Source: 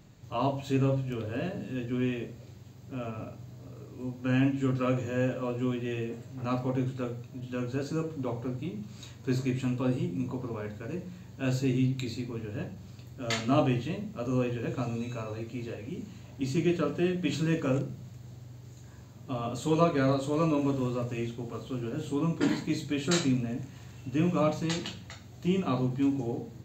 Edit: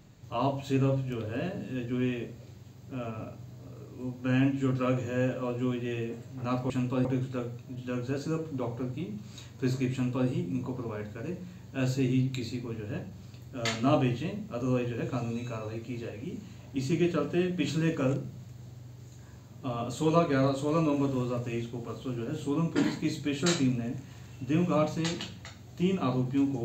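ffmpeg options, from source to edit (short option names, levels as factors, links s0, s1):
-filter_complex "[0:a]asplit=3[s0][s1][s2];[s0]atrim=end=6.702[s3];[s1]atrim=start=9.578:end=9.932[s4];[s2]atrim=start=6.698[s5];[s3][s4]acrossfade=d=0.004:c1=hsin:c2=hsin[s6];[s6][s5]acrossfade=d=0.004:c1=hsin:c2=hsin"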